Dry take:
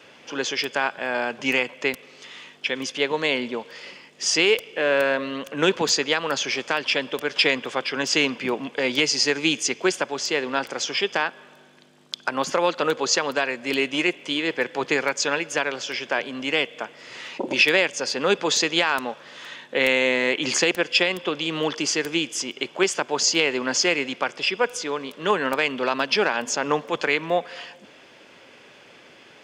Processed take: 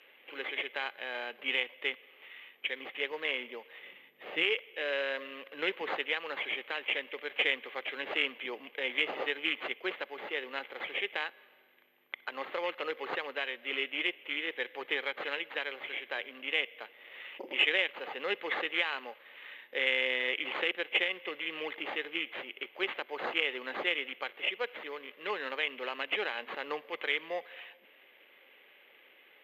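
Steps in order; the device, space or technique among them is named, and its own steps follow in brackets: 3.8–4.43 tone controls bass +13 dB, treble -10 dB; toy sound module (decimation joined by straight lines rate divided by 8×; pulse-width modulation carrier 13000 Hz; speaker cabinet 620–5000 Hz, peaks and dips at 670 Hz -8 dB, 980 Hz -9 dB, 1400 Hz -7 dB, 2100 Hz +4 dB, 3100 Hz +4 dB, 4400 Hz -6 dB); gain -6 dB

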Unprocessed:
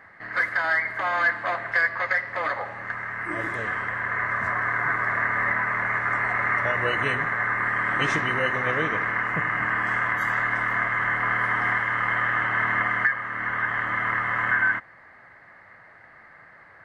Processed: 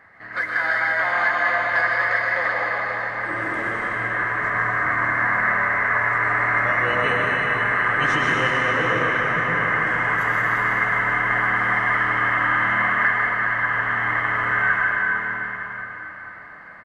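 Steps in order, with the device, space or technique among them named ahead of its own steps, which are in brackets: cave (echo 0.151 s -10 dB; reverb RT60 4.9 s, pre-delay 0.104 s, DRR -4 dB); gain -1.5 dB

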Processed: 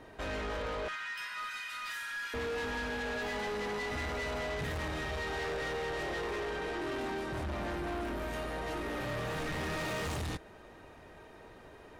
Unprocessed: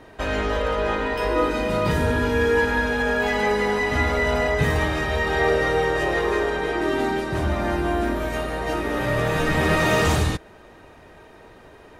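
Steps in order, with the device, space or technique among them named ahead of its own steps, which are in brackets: 0.88–2.34 steep high-pass 1300 Hz 36 dB/oct; saturation between pre-emphasis and de-emphasis (high shelf 8300 Hz +8.5 dB; soft clip -28 dBFS, distortion -6 dB; high shelf 8300 Hz -8.5 dB); gain -6 dB

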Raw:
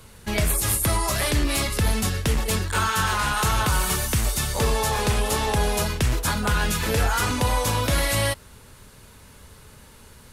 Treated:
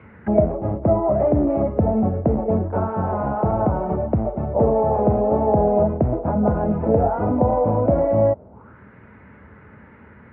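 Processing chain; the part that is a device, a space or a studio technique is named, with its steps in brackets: envelope filter bass rig (envelope low-pass 660–2300 Hz down, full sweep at -29 dBFS; speaker cabinet 69–2100 Hz, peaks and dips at 210 Hz +7 dB, 310 Hz +5 dB, 1100 Hz -4 dB, 1700 Hz -8 dB); gain +2.5 dB

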